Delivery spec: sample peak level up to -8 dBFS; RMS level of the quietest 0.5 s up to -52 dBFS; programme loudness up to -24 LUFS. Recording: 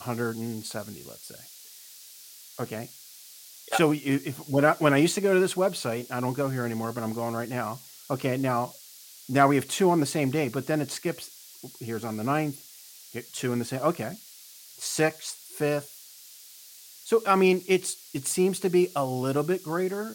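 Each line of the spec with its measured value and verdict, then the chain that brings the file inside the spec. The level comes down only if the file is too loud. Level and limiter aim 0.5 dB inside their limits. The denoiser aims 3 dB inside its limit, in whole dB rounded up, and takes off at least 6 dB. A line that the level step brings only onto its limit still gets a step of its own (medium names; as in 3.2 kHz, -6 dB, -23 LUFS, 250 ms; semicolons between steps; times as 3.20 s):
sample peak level -6.5 dBFS: fail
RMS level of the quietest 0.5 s -49 dBFS: fail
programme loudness -27.0 LUFS: pass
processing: noise reduction 6 dB, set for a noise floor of -49 dBFS; peak limiter -8.5 dBFS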